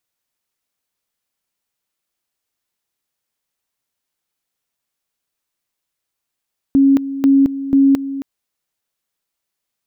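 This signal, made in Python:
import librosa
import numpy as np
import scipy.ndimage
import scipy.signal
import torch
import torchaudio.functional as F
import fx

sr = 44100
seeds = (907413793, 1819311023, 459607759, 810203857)

y = fx.two_level_tone(sr, hz=274.0, level_db=-7.5, drop_db=13.5, high_s=0.22, low_s=0.27, rounds=3)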